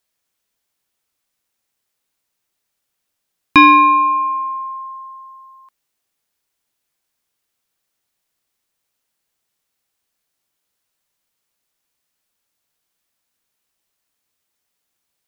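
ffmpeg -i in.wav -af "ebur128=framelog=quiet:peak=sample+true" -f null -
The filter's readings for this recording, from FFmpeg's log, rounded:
Integrated loudness:
  I:         -12.0 LUFS
  Threshold: -24.8 LUFS
Loudness range:
  LRA:        14.8 LU
  Threshold: -37.9 LUFS
  LRA low:   -30.4 LUFS
  LRA high:  -15.6 LUFS
Sample peak:
  Peak:       -1.8 dBFS
True peak:
  Peak:       -1.8 dBFS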